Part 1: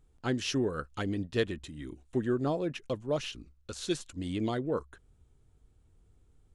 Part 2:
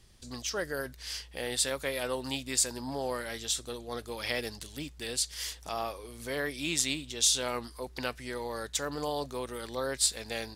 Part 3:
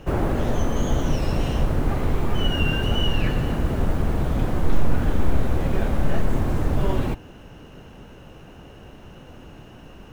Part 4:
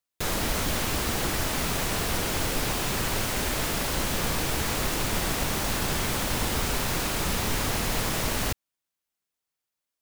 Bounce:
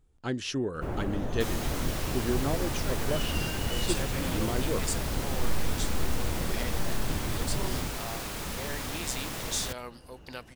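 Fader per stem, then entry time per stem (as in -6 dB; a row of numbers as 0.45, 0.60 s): -1.0, -7.0, -10.5, -8.5 dB; 0.00, 2.30, 0.75, 1.20 s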